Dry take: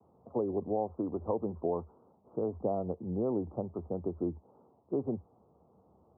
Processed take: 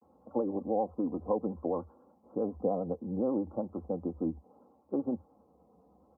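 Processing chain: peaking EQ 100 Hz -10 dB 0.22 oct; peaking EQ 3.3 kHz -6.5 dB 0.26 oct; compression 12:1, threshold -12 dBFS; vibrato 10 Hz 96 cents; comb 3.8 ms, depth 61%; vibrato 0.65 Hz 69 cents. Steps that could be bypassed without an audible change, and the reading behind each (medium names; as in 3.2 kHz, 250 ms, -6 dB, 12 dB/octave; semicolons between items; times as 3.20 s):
peaking EQ 3.3 kHz: input has nothing above 1.1 kHz; compression, threshold -12 dBFS: peak at its input -18.5 dBFS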